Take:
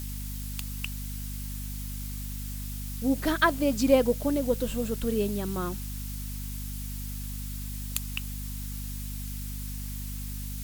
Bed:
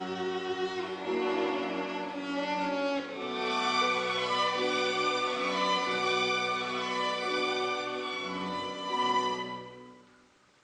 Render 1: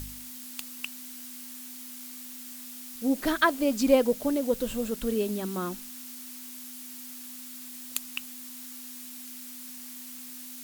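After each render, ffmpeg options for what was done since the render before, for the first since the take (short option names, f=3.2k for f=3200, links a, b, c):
-af "bandreject=f=50:t=h:w=4,bandreject=f=100:t=h:w=4,bandreject=f=150:t=h:w=4,bandreject=f=200:t=h:w=4"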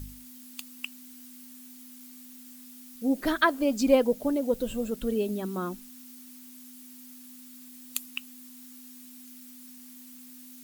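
-af "afftdn=nr=9:nf=-43"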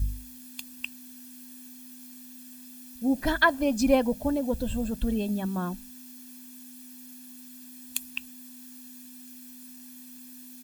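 -af "equalizer=f=61:t=o:w=1.6:g=14.5,aecho=1:1:1.2:0.6"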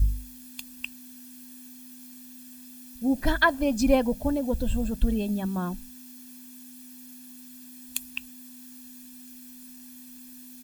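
-af "lowshelf=f=68:g=9.5"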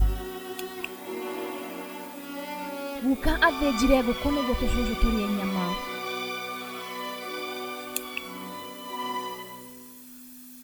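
-filter_complex "[1:a]volume=-4dB[a];[0:a][a]amix=inputs=2:normalize=0"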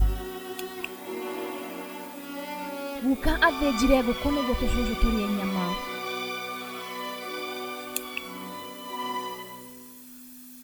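-af anull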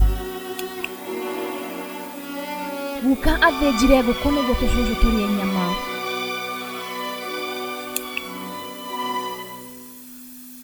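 -af "volume=6dB,alimiter=limit=-3dB:level=0:latency=1"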